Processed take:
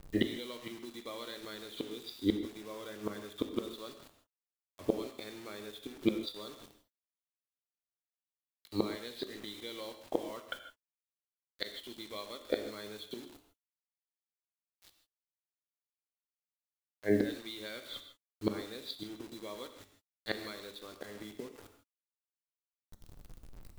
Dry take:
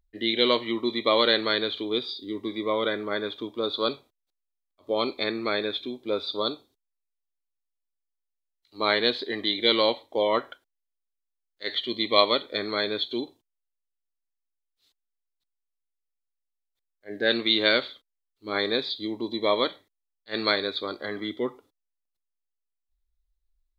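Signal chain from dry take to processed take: low shelf 150 Hz +12 dB; compressor 2.5:1, threshold -24 dBFS, peak gain reduction 7.5 dB; flipped gate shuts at -23 dBFS, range -26 dB; bit-crush 10-bit; non-linear reverb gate 0.18 s flat, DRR 7 dB; gain +7.5 dB

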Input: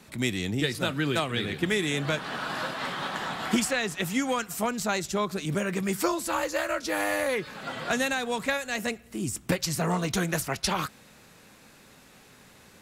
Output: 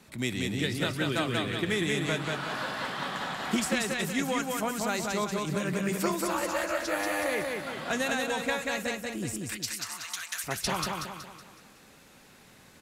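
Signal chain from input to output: 9.39–10.44 Bessel high-pass 1800 Hz, order 4; feedback echo 0.186 s, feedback 45%, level -3 dB; gain -3.5 dB

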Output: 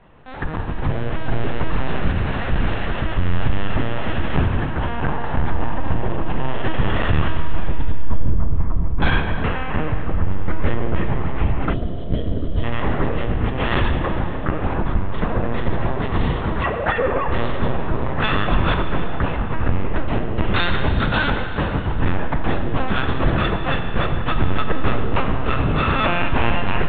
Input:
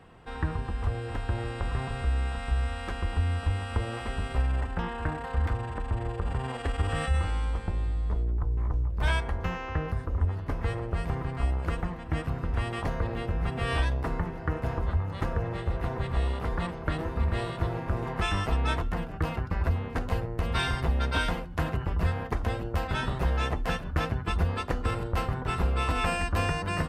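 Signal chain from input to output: 16.63–17.28 sine-wave speech; in parallel at -7 dB: soft clip -27 dBFS, distortion -11 dB; on the sum: AGC gain up to 5.5 dB; LPC vocoder at 8 kHz pitch kept; Schroeder reverb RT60 2.6 s, combs from 26 ms, DRR 6 dB; 11.73–12.64 spectral gain 720–2900 Hz -15 dB

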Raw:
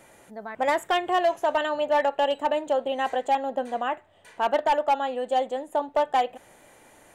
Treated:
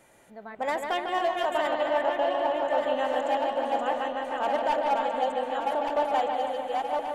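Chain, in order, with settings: regenerating reverse delay 0.589 s, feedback 62%, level -3 dB; 1.86–2.78 high shelf 4400 Hz -10.5 dB; 5.01–5.6 reverse; analogue delay 0.149 s, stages 4096, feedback 70%, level -6 dB; gain -5.5 dB

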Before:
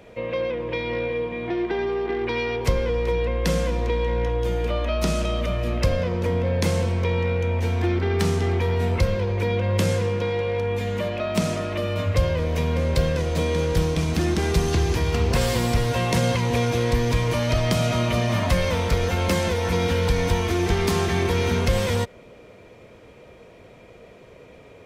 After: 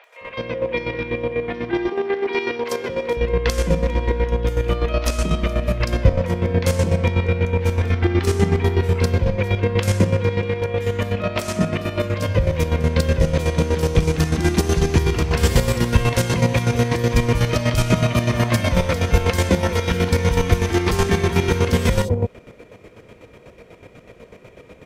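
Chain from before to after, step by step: 1.67–2.96 HPF 250 Hz 12 dB/oct; three bands offset in time mids, highs, lows 40/210 ms, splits 740/3900 Hz; chopper 8.1 Hz, depth 60%, duty 35%; gain +7.5 dB

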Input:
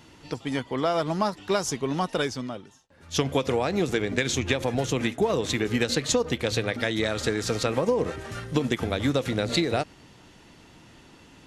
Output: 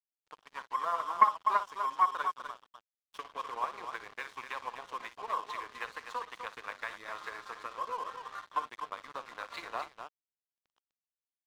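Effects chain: rotary speaker horn 6.3 Hz, later 0.85 Hz, at 6.41; ladder band-pass 1100 Hz, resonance 85%; loudspeakers at several distances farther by 20 m -11 dB, 86 m -7 dB; crossover distortion -54 dBFS; Doppler distortion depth 0.11 ms; gain +6 dB

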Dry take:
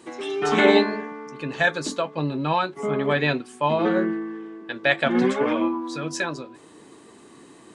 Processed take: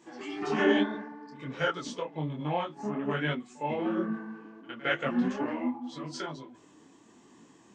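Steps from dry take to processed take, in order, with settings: formant shift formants -3 st; pre-echo 58 ms -21 dB; detuned doubles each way 42 cents; gain -5 dB

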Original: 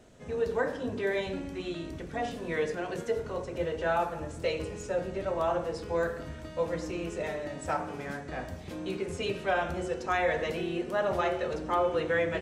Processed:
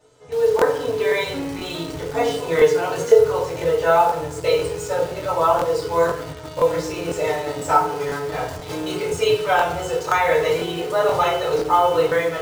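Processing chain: ten-band EQ 125 Hz +11 dB, 250 Hz -4 dB, 500 Hz +7 dB, 1000 Hz +11 dB, 4000 Hz +5 dB; AGC gain up to 9.5 dB; high shelf 3500 Hz +8.5 dB; notches 50/100/150/200/250/300/350/400/450 Hz; resonator 430 Hz, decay 0.16 s, harmonics odd, mix 80%; FDN reverb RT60 0.32 s, low-frequency decay 0.9×, high-frequency decay 1×, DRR -5.5 dB; in parallel at -9 dB: bit-crush 5-bit; on the sum: crackling interface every 0.50 s, samples 1024, repeat, from 0.57; gain -1 dB

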